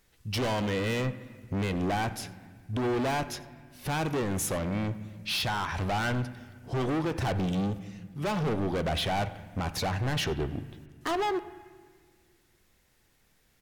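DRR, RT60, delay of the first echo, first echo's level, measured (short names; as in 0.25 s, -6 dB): 11.5 dB, 1.7 s, 90 ms, -23.0 dB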